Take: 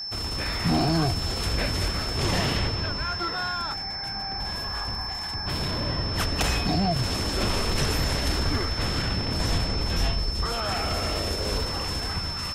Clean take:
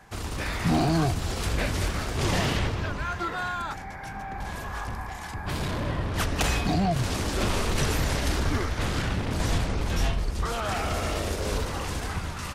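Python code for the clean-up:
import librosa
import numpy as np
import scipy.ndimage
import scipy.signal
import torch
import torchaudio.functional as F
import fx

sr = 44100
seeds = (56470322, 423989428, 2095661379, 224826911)

y = fx.fix_declick_ar(x, sr, threshold=6.5)
y = fx.notch(y, sr, hz=5300.0, q=30.0)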